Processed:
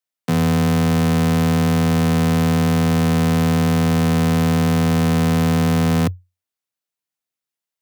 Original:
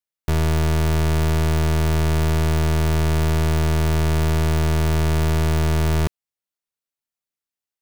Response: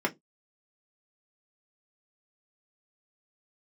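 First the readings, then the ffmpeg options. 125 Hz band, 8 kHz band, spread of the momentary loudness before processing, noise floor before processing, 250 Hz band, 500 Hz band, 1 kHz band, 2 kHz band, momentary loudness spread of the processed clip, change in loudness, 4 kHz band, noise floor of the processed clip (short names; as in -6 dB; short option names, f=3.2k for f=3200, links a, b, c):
+2.0 dB, +2.5 dB, 0 LU, under -85 dBFS, +9.0 dB, +2.5 dB, +4.0 dB, +3.0 dB, 0 LU, +3.5 dB, +3.0 dB, under -85 dBFS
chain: -filter_complex "[0:a]afreqshift=90,asplit=2[a][b];[b]tiltshelf=f=1.3k:g=-4[c];[1:a]atrim=start_sample=2205,asetrate=79380,aresample=44100[d];[c][d]afir=irnorm=-1:irlink=0,volume=-26dB[e];[a][e]amix=inputs=2:normalize=0,volume=2dB"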